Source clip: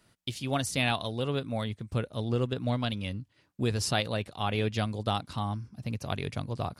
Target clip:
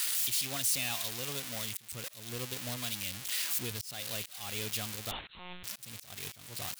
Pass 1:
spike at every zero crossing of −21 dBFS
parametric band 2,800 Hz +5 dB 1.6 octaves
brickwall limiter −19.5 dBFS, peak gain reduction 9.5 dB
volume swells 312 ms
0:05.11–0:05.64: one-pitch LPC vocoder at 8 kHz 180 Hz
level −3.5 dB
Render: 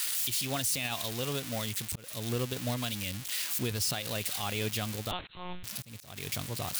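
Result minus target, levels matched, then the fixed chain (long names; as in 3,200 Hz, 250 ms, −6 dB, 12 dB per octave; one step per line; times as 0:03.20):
spike at every zero crossing: distortion −9 dB
spike at every zero crossing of −11.5 dBFS
parametric band 2,800 Hz +5 dB 1.6 octaves
brickwall limiter −19.5 dBFS, peak gain reduction 12 dB
volume swells 312 ms
0:05.11–0:05.64: one-pitch LPC vocoder at 8 kHz 180 Hz
level −3.5 dB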